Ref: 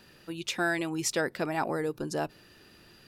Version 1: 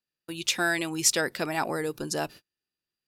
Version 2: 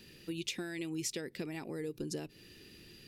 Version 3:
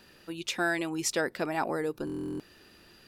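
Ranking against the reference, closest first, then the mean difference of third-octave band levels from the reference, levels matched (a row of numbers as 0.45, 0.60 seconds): 3, 2, 1; 2.0, 5.5, 7.5 decibels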